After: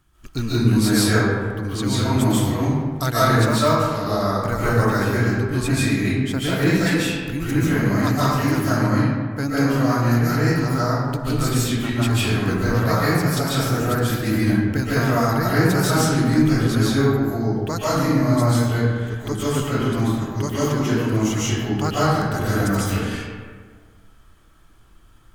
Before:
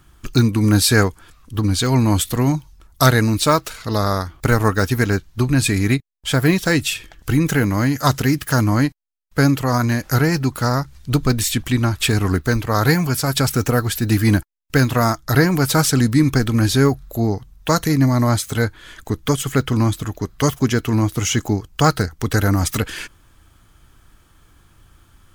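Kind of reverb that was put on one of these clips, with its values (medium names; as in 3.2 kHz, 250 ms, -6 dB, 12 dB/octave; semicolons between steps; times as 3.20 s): algorithmic reverb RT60 1.7 s, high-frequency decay 0.5×, pre-delay 105 ms, DRR -9.5 dB; trim -11.5 dB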